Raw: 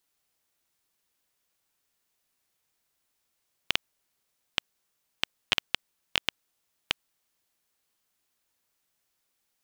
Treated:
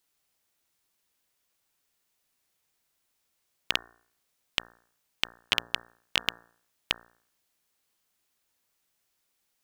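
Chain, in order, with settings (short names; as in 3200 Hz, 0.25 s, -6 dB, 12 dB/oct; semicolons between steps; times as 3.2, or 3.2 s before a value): de-hum 58.42 Hz, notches 31; gain +1 dB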